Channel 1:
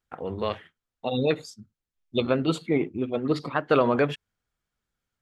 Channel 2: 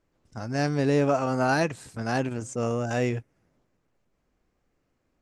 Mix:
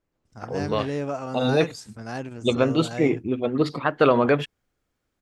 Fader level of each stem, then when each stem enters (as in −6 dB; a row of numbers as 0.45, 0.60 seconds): +3.0, −6.0 decibels; 0.30, 0.00 seconds